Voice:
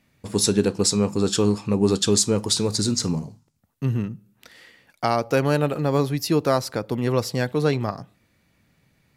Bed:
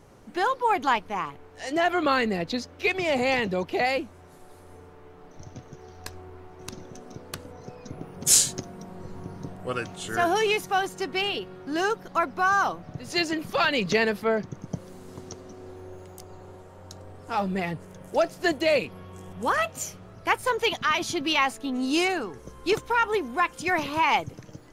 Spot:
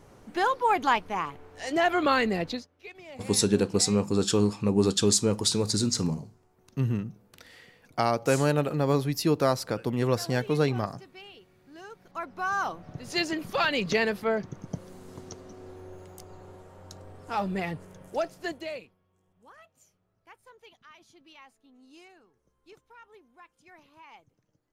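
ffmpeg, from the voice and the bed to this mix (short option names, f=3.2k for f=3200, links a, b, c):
-filter_complex "[0:a]adelay=2950,volume=-3.5dB[a];[1:a]volume=17.5dB,afade=t=out:st=2.46:d=0.21:silence=0.1,afade=t=in:st=11.89:d=1.12:silence=0.125893,afade=t=out:st=17.76:d=1.2:silence=0.0473151[b];[a][b]amix=inputs=2:normalize=0"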